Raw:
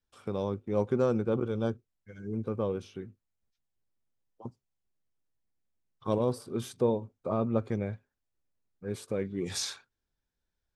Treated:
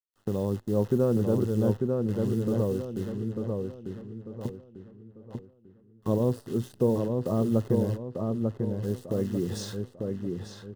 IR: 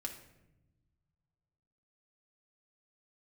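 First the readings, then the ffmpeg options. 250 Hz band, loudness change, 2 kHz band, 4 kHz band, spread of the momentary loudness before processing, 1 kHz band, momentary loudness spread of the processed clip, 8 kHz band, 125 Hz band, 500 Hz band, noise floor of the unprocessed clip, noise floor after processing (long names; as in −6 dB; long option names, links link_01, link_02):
+6.5 dB, +3.0 dB, can't be measured, −4.0 dB, 17 LU, −1.5 dB, 14 LU, −4.0 dB, +8.0 dB, +3.5 dB, below −85 dBFS, −59 dBFS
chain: -filter_complex "[0:a]agate=range=-33dB:threshold=-47dB:ratio=3:detection=peak,tiltshelf=frequency=700:gain=8,asplit=2[link_01][link_02];[link_02]acompressor=threshold=-36dB:ratio=12,volume=-1dB[link_03];[link_01][link_03]amix=inputs=2:normalize=0,acrusher=bits=8:dc=4:mix=0:aa=0.000001,asuperstop=centerf=2300:order=8:qfactor=5.7,asplit=2[link_04][link_05];[link_05]adelay=895,lowpass=frequency=2800:poles=1,volume=-3.5dB,asplit=2[link_06][link_07];[link_07]adelay=895,lowpass=frequency=2800:poles=1,volume=0.37,asplit=2[link_08][link_09];[link_09]adelay=895,lowpass=frequency=2800:poles=1,volume=0.37,asplit=2[link_10][link_11];[link_11]adelay=895,lowpass=frequency=2800:poles=1,volume=0.37,asplit=2[link_12][link_13];[link_13]adelay=895,lowpass=frequency=2800:poles=1,volume=0.37[link_14];[link_06][link_08][link_10][link_12][link_14]amix=inputs=5:normalize=0[link_15];[link_04][link_15]amix=inputs=2:normalize=0,volume=-2.5dB"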